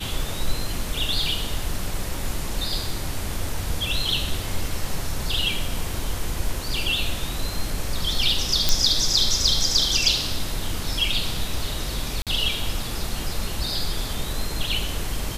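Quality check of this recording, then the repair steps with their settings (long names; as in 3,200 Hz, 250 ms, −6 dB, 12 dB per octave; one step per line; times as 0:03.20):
0:08.69: click
0:12.22–0:12.27: drop-out 47 ms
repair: click removal
repair the gap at 0:12.22, 47 ms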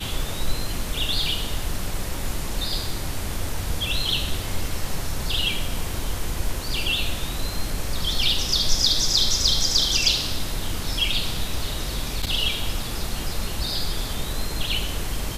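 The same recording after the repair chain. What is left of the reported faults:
none of them is left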